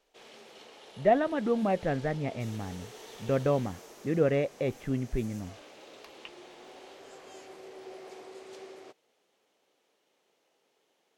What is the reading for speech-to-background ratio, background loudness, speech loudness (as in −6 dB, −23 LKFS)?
19.0 dB, −49.0 LKFS, −30.0 LKFS